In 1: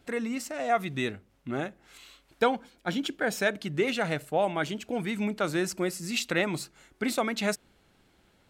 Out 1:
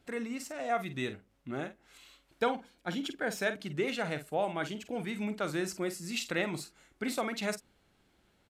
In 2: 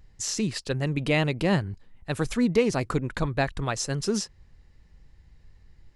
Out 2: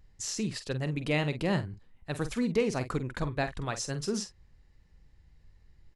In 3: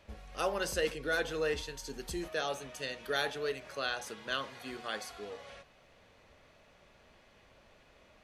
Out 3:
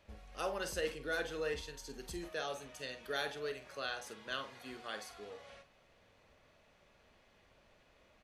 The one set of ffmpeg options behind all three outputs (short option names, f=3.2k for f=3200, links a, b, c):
-filter_complex "[0:a]asplit=2[a][b];[b]adelay=47,volume=-11dB[c];[a][c]amix=inputs=2:normalize=0,aresample=32000,aresample=44100,volume=-5.5dB"